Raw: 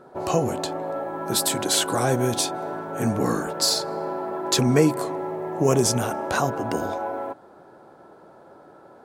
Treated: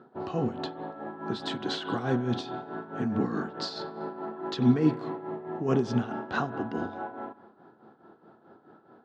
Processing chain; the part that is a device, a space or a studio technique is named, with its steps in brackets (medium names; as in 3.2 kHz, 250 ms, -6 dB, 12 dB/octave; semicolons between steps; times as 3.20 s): combo amplifier with spring reverb and tremolo (spring tank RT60 1 s, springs 32/41 ms, chirp 60 ms, DRR 12.5 dB; tremolo 4.7 Hz, depth 66%; cabinet simulation 92–3800 Hz, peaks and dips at 230 Hz +6 dB, 570 Hz -10 dB, 950 Hz -4 dB, 2.3 kHz -8 dB); trim -2.5 dB